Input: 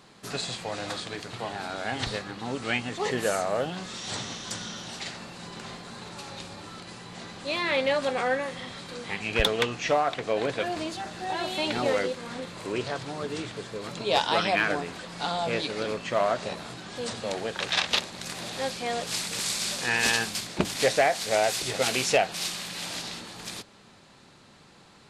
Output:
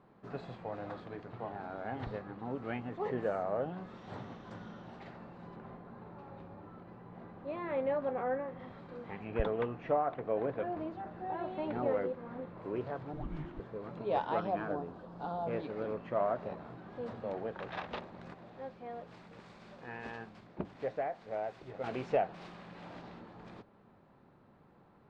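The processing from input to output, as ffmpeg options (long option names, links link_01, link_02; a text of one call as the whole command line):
ffmpeg -i in.wav -filter_complex "[0:a]asettb=1/sr,asplit=3[link_01][link_02][link_03];[link_01]atrim=end=5.564[link_04];[link_02]atrim=start=5.56:end=8.6,asetpts=PTS-STARTPTS,afade=type=in:duration=0.004:curve=qsin,afade=type=out:start_time=3.036:duration=0.004:curve=qsin,aemphasis=mode=reproduction:type=75kf[link_05];[link_03]atrim=start=8.596[link_06];[link_04][link_05]acrossfade=duration=0.004:curve1=hsin:curve2=qsin[link_07];[link_07][link_06]acrossfade=duration=0.004:curve1=qsin:curve2=hsin,asettb=1/sr,asplit=3[link_08][link_09][link_10];[link_08]atrim=end=9.244[link_11];[link_09]atrim=start=9.24:end=12.62,asetpts=PTS-STARTPTS,afade=type=in:duration=0.004:curve=qsin,afade=type=out:start_time=3.376:duration=0.004:curve=qsin,aemphasis=mode=reproduction:type=50fm[link_12];[link_10]atrim=start=12.616[link_13];[link_11][link_12]acrossfade=duration=0.004:curve1=hsin:curve2=qsin[link_14];[link_14][link_13]acrossfade=duration=0.004:curve1=qsin:curve2=hsin,asettb=1/sr,asplit=3[link_15][link_16][link_17];[link_15]atrim=end=13.134[link_18];[link_16]atrim=start=13.13:end=13.6,asetpts=PTS-STARTPTS,afade=type=in:duration=0.004:curve=qsin,afade=type=out:start_time=0.466:duration=0.004:curve=qsin,afreqshift=-470[link_19];[link_17]atrim=start=13.596[link_20];[link_18][link_19]acrossfade=duration=0.004:curve1=hsin:curve2=qsin[link_21];[link_21][link_20]acrossfade=duration=0.004:curve1=qsin:curve2=hsin,asettb=1/sr,asplit=3[link_22][link_23][link_24];[link_22]atrim=end=14.404[link_25];[link_23]atrim=start=14.4:end=15.47,asetpts=PTS-STARTPTS,afade=type=in:duration=0.004:curve=qsin,afade=type=out:start_time=1.066:duration=0.004:curve=qsin,equalizer=frequency=2100:width=1.8:gain=-12[link_26];[link_24]atrim=start=15.466[link_27];[link_25][link_26]acrossfade=duration=0.004:curve1=hsin:curve2=qsin[link_28];[link_28][link_27]acrossfade=duration=0.004:curve1=qsin:curve2=hsin,asplit=3[link_29][link_30][link_31];[link_29]atrim=end=18.342[link_32];[link_30]atrim=start=18.338:end=21.842,asetpts=PTS-STARTPTS,volume=-6.5dB[link_33];[link_31]atrim=start=21.838[link_34];[link_32][link_33]acrossfade=duration=0.004:curve1=hsin:curve2=hsin[link_35];[link_35][link_34]acrossfade=duration=0.004:curve1=hsin:curve2=hsin,lowpass=1100,volume=-6dB" out.wav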